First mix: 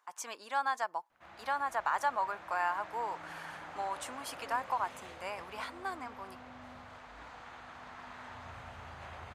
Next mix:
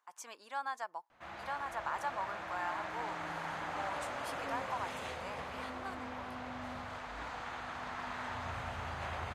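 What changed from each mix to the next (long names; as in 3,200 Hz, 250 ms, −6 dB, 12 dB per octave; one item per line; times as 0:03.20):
speech −6.5 dB
background +7.0 dB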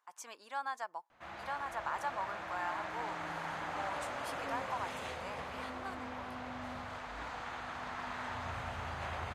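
nothing changed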